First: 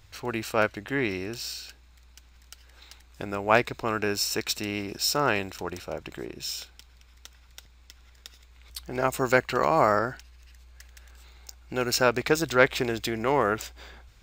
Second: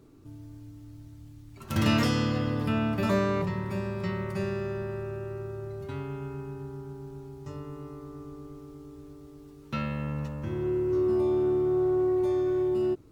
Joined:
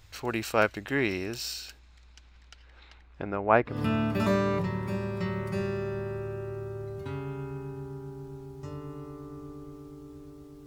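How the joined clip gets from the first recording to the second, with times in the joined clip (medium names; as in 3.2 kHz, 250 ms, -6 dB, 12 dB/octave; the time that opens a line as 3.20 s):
first
1.78–3.83 s: low-pass 7.2 kHz -> 1.2 kHz
3.74 s: go over to second from 2.57 s, crossfade 0.18 s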